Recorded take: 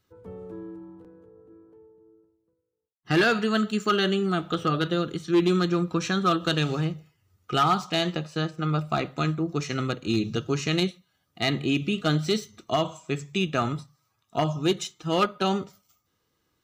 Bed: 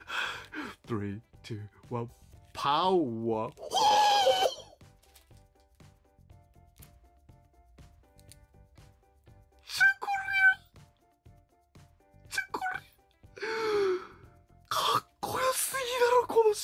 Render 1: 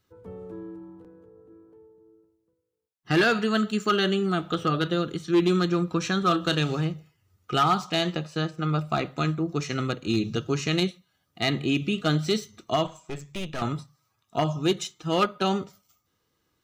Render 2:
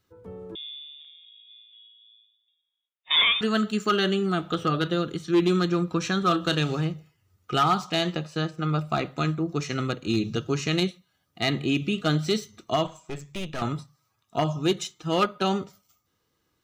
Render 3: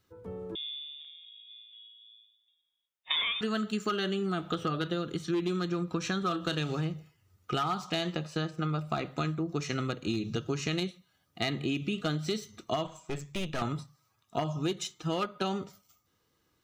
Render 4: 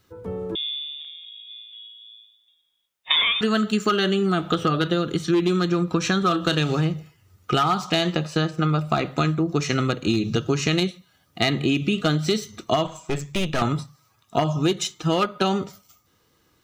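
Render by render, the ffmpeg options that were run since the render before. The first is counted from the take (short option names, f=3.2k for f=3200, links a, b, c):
-filter_complex "[0:a]asettb=1/sr,asplit=3[a][b][c];[a]atrim=end=6.194[d];[b]atrim=start=6.19:end=6.61,asetpts=PTS-STARTPTS,afade=t=in:d=0.004:c=qsin,afade=t=out:st=0.416:d=0.004:c=qsin,asplit=2[e][f];[f]adelay=34,volume=-13dB[g];[e][g]amix=inputs=2:normalize=0,atrim=end_sample=18522[h];[c]atrim=start=6.606[i];[d][h]acrossfade=d=0.004:c1=hsin:c2=qsin[j];[j][i]acrossfade=d=0.004:c1=qsin:c2=hsin,asettb=1/sr,asplit=3[k][l][m];[k]atrim=end=12.864[n];[l]atrim=start=12.86:end=13.62,asetpts=PTS-STARTPTS,afade=t=in:d=0.004:c=qsin,afade=t=out:st=0.756:d=0.004:c=qsin,aeval=exprs='(tanh(28.2*val(0)+0.7)-tanh(0.7))/28.2':c=same[o];[m]atrim=start=13.616[p];[n][o]acrossfade=d=0.004:c1=hsin:c2=qsin[q];[q][p]acrossfade=d=0.004:c1=qsin:c2=hsin"
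-filter_complex "[0:a]asettb=1/sr,asplit=3[a][b][c];[a]atrim=end=0.554[d];[b]atrim=start=0.55:end=3.41,asetpts=PTS-STARTPTS,afade=t=in:d=0.004:c=qsin,afade=t=out:st=2.856:d=0.004:c=qsin,lowpass=f=3.2k:t=q:w=0.5098,lowpass=f=3.2k:t=q:w=0.6013,lowpass=f=3.2k:t=q:w=0.9,lowpass=f=3.2k:t=q:w=2.563,afreqshift=-3800[e];[c]atrim=start=3.406[f];[d][e]acrossfade=d=0.004:c1=hsin:c2=qsin[g];[g][f]acrossfade=d=0.004:c1=qsin:c2=hsin"
-af "acompressor=threshold=-28dB:ratio=6"
-af "volume=10dB"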